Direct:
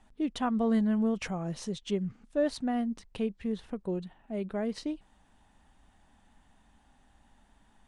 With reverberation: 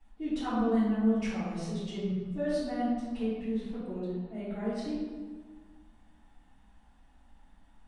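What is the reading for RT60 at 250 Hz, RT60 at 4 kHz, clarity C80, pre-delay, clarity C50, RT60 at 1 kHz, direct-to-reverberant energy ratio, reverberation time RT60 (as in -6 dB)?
1.9 s, 0.90 s, 1.0 dB, 3 ms, -2.0 dB, 1.5 s, -14.5 dB, 1.5 s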